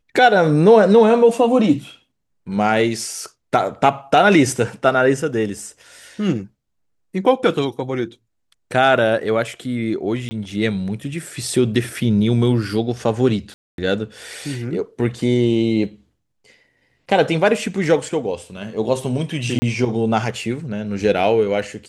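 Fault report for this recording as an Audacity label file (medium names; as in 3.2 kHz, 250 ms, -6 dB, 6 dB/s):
10.290000	10.310000	dropout 20 ms
13.540000	13.780000	dropout 242 ms
19.590000	19.620000	dropout 30 ms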